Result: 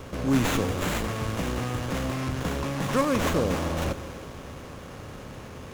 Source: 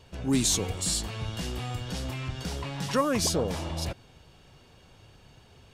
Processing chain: spectral levelling over time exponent 0.6; Schroeder reverb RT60 3.4 s, combs from 26 ms, DRR 11 dB; sliding maximum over 9 samples

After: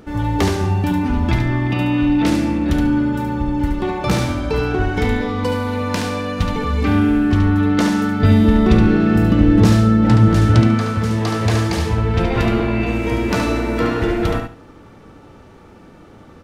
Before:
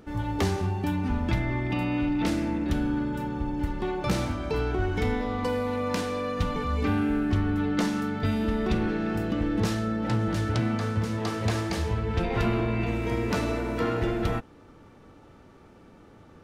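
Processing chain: 8.20–10.67 s: bass shelf 430 Hz +6 dB; feedback delay 72 ms, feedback 22%, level -5.5 dB; trim +8 dB

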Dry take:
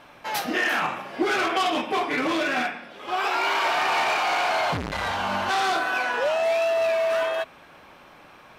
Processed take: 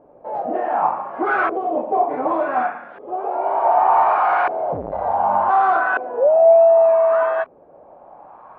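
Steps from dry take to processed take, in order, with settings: LFO low-pass saw up 0.67 Hz 420–1600 Hz; peaking EQ 760 Hz +9.5 dB 1.5 oct; trim -4 dB

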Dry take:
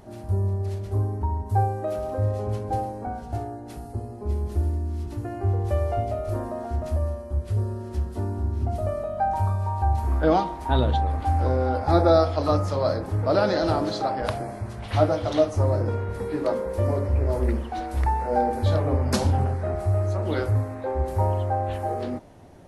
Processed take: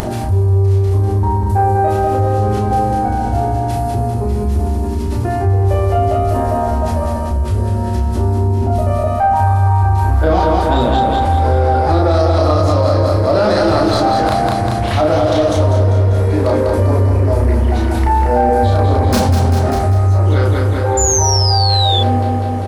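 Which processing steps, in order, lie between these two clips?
tracing distortion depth 0.05 ms; feedback delay 197 ms, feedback 57%, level -5 dB; painted sound fall, 20.97–22.00 s, 3.4–7.2 kHz -25 dBFS; de-hum 74.13 Hz, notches 31; in parallel at -6 dB: saturation -18 dBFS, distortion -13 dB; on the sum: doubling 33 ms -2 dB; upward compressor, threshold -27 dBFS; loudness maximiser +7.5 dB; level flattener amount 50%; trim -5 dB

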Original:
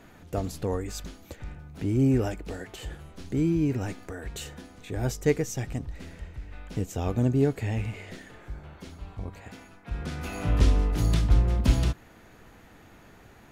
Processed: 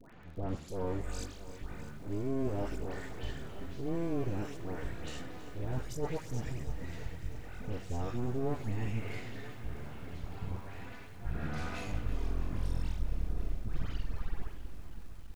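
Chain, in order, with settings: tape stop on the ending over 2.97 s; harmonic-percussive split percussive -14 dB; half-wave rectifier; reverse; compression 6:1, threshold -35 dBFS, peak gain reduction 18 dB; reverse; tempo 0.88×; level-controlled noise filter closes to 2.8 kHz, open at -33.5 dBFS; phase dispersion highs, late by 131 ms, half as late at 1.6 kHz; crackle 50 per s -56 dBFS; on a send at -18.5 dB: reverberation RT60 0.55 s, pre-delay 77 ms; on the sum: bit-crushed delay 326 ms, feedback 80%, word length 10-bit, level -14 dB; trim +5.5 dB

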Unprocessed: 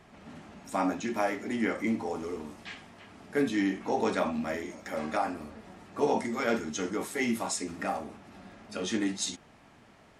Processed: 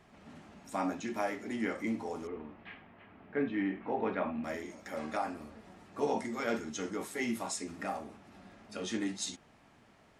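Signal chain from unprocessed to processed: 2.27–4.44 s: low-pass 2.7 kHz 24 dB/octave; trim -5 dB

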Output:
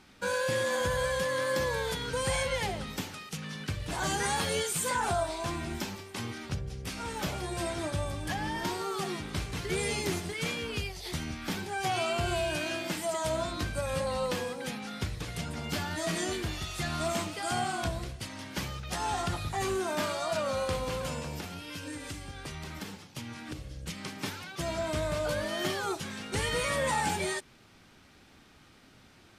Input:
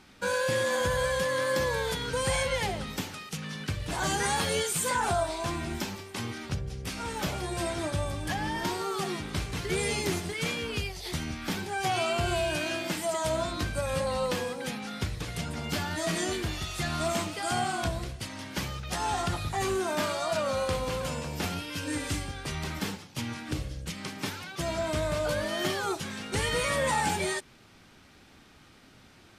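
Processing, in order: 21.38–23.83 s: compression, threshold -35 dBFS, peak gain reduction 8.5 dB; trim -2 dB

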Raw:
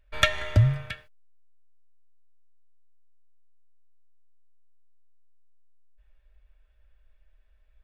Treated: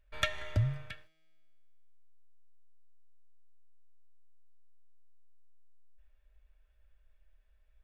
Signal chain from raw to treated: in parallel at -1 dB: compression, threshold -48 dBFS, peak gain reduction 30 dB; on the sum: feedback comb 160 Hz, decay 2 s, mix 50%; trim -4.5 dB

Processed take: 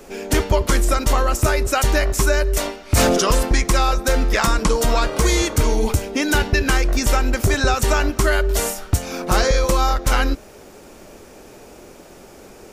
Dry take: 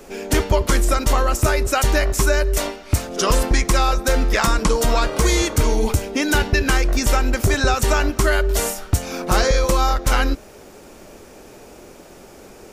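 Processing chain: 2.85–3.30 s: decay stretcher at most 21 dB/s

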